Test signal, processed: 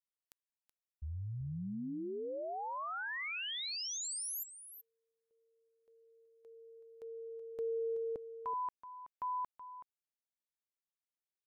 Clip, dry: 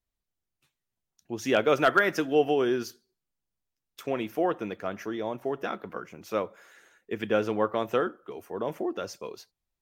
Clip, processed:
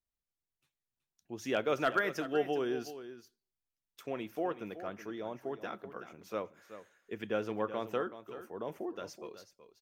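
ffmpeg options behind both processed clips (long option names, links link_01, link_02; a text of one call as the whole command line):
ffmpeg -i in.wav -af "aecho=1:1:376:0.237,volume=-8.5dB" out.wav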